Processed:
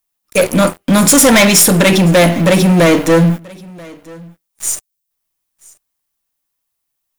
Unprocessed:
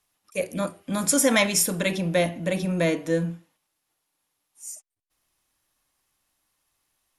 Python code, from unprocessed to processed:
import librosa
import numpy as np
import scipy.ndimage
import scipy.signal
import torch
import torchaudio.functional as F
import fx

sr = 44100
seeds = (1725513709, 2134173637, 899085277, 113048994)

p1 = np.where(x < 0.0, 10.0 ** (-3.0 / 20.0) * x, x)
p2 = fx.dmg_noise_colour(p1, sr, seeds[0], colour='violet', level_db=-68.0)
p3 = fx.leveller(p2, sr, passes=5)
p4 = p3 + fx.echo_single(p3, sr, ms=984, db=-24.0, dry=0)
y = F.gain(torch.from_numpy(p4), 3.5).numpy()